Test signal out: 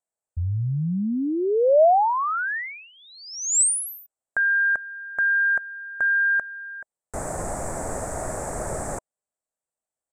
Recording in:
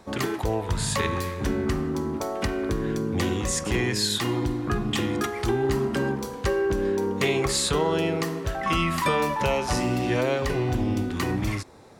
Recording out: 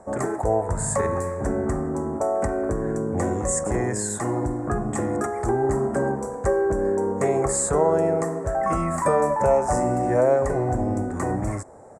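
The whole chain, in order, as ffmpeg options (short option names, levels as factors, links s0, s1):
-af "firequalizer=gain_entry='entry(340,0);entry(630,11);entry(1000,1);entry(1800,-3);entry(3000,-29);entry(4300,-21);entry(7800,8);entry(15000,-26)':delay=0.05:min_phase=1"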